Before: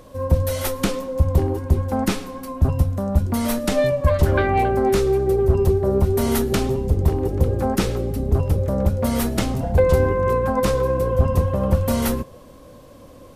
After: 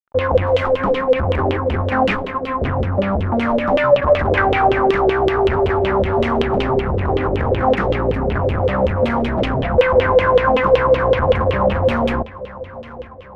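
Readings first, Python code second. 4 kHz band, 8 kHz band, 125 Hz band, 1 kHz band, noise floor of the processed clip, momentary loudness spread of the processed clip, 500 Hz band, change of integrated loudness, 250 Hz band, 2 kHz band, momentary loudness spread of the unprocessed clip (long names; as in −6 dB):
+4.5 dB, below −15 dB, −1.5 dB, +8.5 dB, −35 dBFS, 7 LU, +5.5 dB, +3.5 dB, +1.5 dB, +10.0 dB, 5 LU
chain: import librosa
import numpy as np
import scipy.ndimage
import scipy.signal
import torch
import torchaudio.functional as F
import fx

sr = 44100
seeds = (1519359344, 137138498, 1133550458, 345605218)

y = fx.fuzz(x, sr, gain_db=27.0, gate_db=-35.0)
y = fx.echo_feedback(y, sr, ms=853, feedback_pct=56, wet_db=-18.5)
y = fx.filter_lfo_lowpass(y, sr, shape='saw_down', hz=5.3, low_hz=430.0, high_hz=3200.0, q=5.5)
y = y * librosa.db_to_amplitude(-4.5)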